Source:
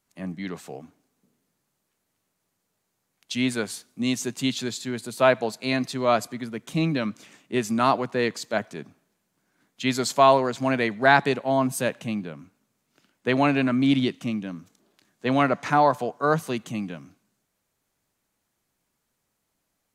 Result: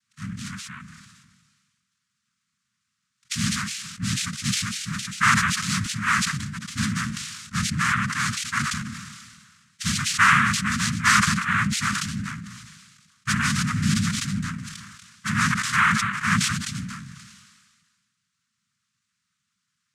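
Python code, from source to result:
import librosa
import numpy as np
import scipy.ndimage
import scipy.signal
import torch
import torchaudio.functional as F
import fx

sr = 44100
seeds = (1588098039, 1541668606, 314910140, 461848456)

y = fx.noise_vocoder(x, sr, seeds[0], bands=3)
y = scipy.signal.sosfilt(scipy.signal.ellip(3, 1.0, 40, [210.0, 1200.0], 'bandstop', fs=sr, output='sos'), y)
y = fx.sustainer(y, sr, db_per_s=35.0)
y = y * 10.0 ** (2.0 / 20.0)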